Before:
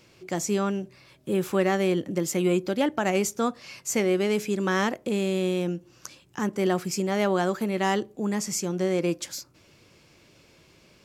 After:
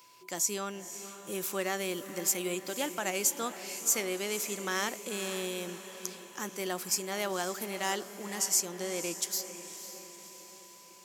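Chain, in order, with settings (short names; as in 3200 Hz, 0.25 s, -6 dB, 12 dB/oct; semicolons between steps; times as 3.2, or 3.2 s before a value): RIAA curve recording; diffused feedback echo 0.525 s, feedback 55%, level -11.5 dB; whine 1000 Hz -51 dBFS; gain -7.5 dB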